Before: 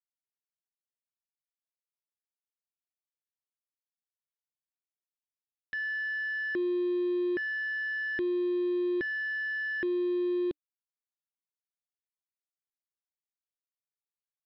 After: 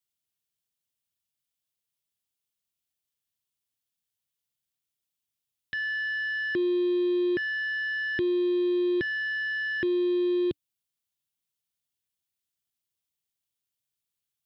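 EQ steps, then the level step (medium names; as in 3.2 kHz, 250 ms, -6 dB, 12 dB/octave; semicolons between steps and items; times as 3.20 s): peaking EQ 110 Hz +13.5 dB 2.2 oct; peaking EQ 3.2 kHz +7 dB 0.79 oct; treble shelf 4.6 kHz +11.5 dB; 0.0 dB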